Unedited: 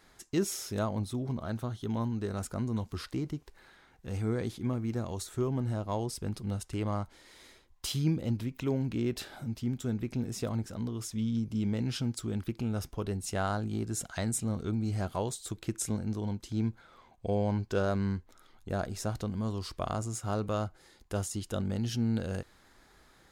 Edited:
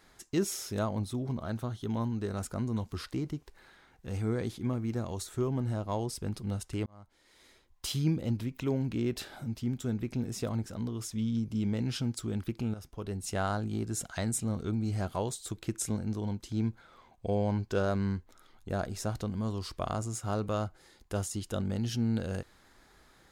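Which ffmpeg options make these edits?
ffmpeg -i in.wav -filter_complex "[0:a]asplit=3[link_01][link_02][link_03];[link_01]atrim=end=6.86,asetpts=PTS-STARTPTS,afade=type=out:start_time=6.856:duration=0.004:curve=hsin[link_04];[link_02]atrim=start=6.86:end=12.74,asetpts=PTS-STARTPTS,afade=type=in:duration=1.07,afade=type=out:start_time=5.876:duration=0.004:curve=hsin:silence=0.223872[link_05];[link_03]atrim=start=12.74,asetpts=PTS-STARTPTS,afade=type=in:duration=0.56:silence=0.223872[link_06];[link_04][link_05][link_06]concat=n=3:v=0:a=1" out.wav

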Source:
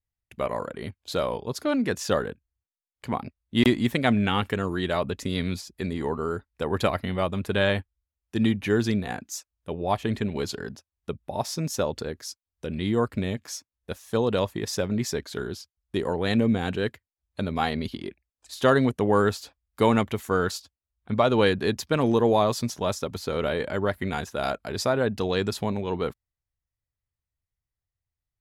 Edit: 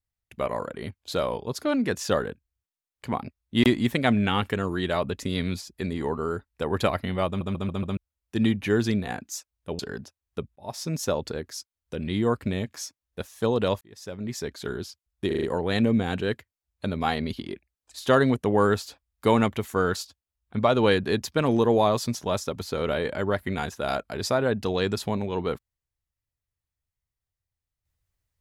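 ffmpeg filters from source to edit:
ffmpeg -i in.wav -filter_complex "[0:a]asplit=13[link_01][link_02][link_03][link_04][link_05][link_06][link_07][link_08][link_09][link_10][link_11][link_12][link_13];[link_01]atrim=end=7.412[link_14];[link_02]atrim=start=7.268:end=7.412[link_15];[link_03]atrim=start=7.268:end=7.412[link_16];[link_04]atrim=start=7.268:end=7.412[link_17];[link_05]atrim=start=7.268:end=7.412[link_18];[link_06]atrim=start=7.968:end=9.792[link_19];[link_07]atrim=start=10.498:end=11.27,asetpts=PTS-STARTPTS,afade=type=out:start_time=0.768:duration=0.004:curve=hsin[link_20];[link_08]atrim=start=11.27:end=14.52,asetpts=PTS-STARTPTS,afade=type=in:duration=0.46:curve=qsin,afade=type=out:start_time=3.246:duration=0.004:curve=hsin[link_21];[link_09]atrim=start=14.52:end=16.022,asetpts=PTS-STARTPTS,afade=type=in:duration=0.92[link_22];[link_10]atrim=start=15.978:end=16.022[link_23];[link_11]atrim=start=15.978:end=16.022[link_24];[link_12]atrim=start=15.978:end=16.022[link_25];[link_13]atrim=start=15.978[link_26];[link_14][link_15]acrossfade=duration=0.004:curve1=hsin:curve2=hsin[link_27];[link_27][link_16]acrossfade=duration=0.004:curve1=hsin:curve2=hsin[link_28];[link_28][link_17]acrossfade=duration=0.004:curve1=hsin:curve2=hsin[link_29];[link_29][link_18]acrossfade=duration=0.004:curve1=hsin:curve2=hsin[link_30];[link_30][link_19]acrossfade=duration=0.004:curve1=hsin:curve2=hsin[link_31];[link_20][link_21][link_22]concat=n=3:v=0:a=1[link_32];[link_31][link_32]acrossfade=duration=0.004:curve1=hsin:curve2=hsin[link_33];[link_33][link_23]acrossfade=duration=0.004:curve1=hsin:curve2=hsin[link_34];[link_34][link_24]acrossfade=duration=0.004:curve1=hsin:curve2=hsin[link_35];[link_35][link_25]acrossfade=duration=0.004:curve1=hsin:curve2=hsin[link_36];[link_36][link_26]acrossfade=duration=0.004:curve1=hsin:curve2=hsin" out.wav

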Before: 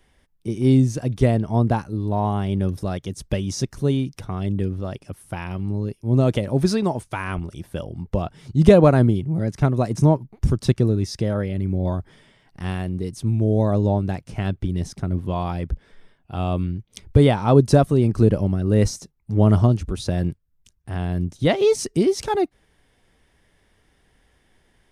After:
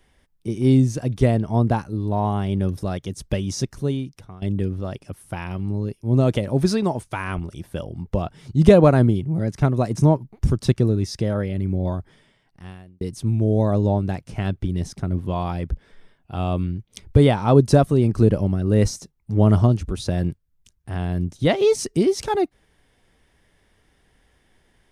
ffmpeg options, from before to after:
ffmpeg -i in.wav -filter_complex "[0:a]asplit=3[link_01][link_02][link_03];[link_01]atrim=end=4.42,asetpts=PTS-STARTPTS,afade=type=out:start_time=3.6:duration=0.82:silence=0.158489[link_04];[link_02]atrim=start=4.42:end=13.01,asetpts=PTS-STARTPTS,afade=type=in:duration=0.004:curve=hsin:silence=0.158489,afade=type=out:start_time=7.32:duration=1.27[link_05];[link_03]atrim=start=13.01,asetpts=PTS-STARTPTS,afade=type=in:duration=0.004:curve=hsin[link_06];[link_04][link_05][link_06]concat=n=3:v=0:a=1" out.wav

